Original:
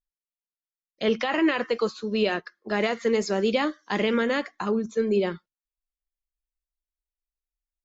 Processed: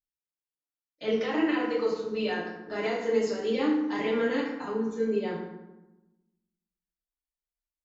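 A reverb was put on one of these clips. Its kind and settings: FDN reverb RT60 1 s, low-frequency decay 1.45×, high-frequency decay 0.6×, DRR -7 dB; trim -13 dB

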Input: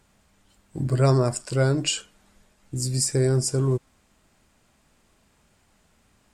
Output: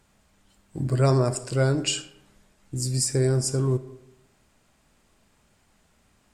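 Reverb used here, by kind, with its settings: algorithmic reverb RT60 0.87 s, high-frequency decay 0.55×, pre-delay 10 ms, DRR 13 dB; trim -1 dB

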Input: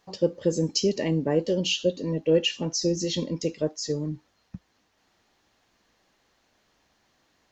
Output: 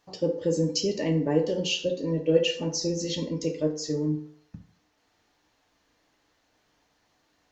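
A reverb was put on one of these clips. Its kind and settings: FDN reverb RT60 0.67 s, low-frequency decay 0.7×, high-frequency decay 0.55×, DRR 3 dB; trim -3 dB

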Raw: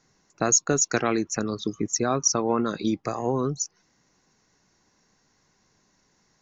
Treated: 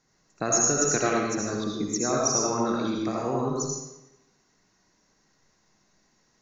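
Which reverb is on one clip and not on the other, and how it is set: algorithmic reverb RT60 0.93 s, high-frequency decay 0.9×, pre-delay 40 ms, DRR -3 dB; trim -5 dB

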